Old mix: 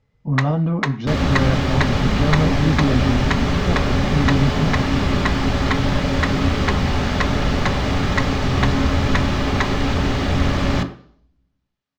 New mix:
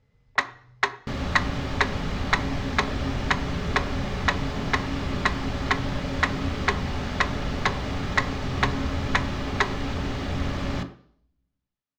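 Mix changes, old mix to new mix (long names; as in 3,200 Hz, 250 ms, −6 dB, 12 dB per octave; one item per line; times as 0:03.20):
speech: muted
second sound −9.5 dB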